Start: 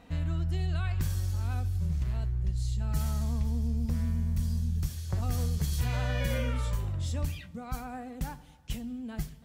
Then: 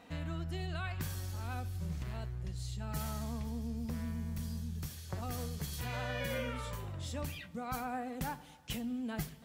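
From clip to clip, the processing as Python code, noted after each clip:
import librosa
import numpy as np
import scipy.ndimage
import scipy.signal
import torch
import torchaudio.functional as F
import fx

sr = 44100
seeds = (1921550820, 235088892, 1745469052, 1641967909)

y = fx.dynamic_eq(x, sr, hz=6800.0, q=0.75, threshold_db=-59.0, ratio=4.0, max_db=-4)
y = fx.highpass(y, sr, hz=280.0, slope=6)
y = fx.rider(y, sr, range_db=10, speed_s=2.0)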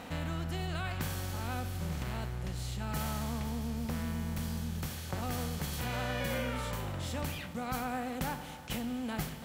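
y = fx.bin_compress(x, sr, power=0.6)
y = fx.attack_slew(y, sr, db_per_s=360.0)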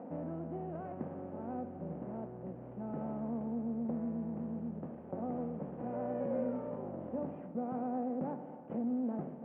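y = fx.cvsd(x, sr, bps=16000)
y = scipy.signal.sosfilt(scipy.signal.cheby1(2, 1.0, [220.0, 630.0], 'bandpass', fs=sr, output='sos'), y)
y = fx.air_absorb(y, sr, metres=120.0)
y = y * 10.0 ** (3.5 / 20.0)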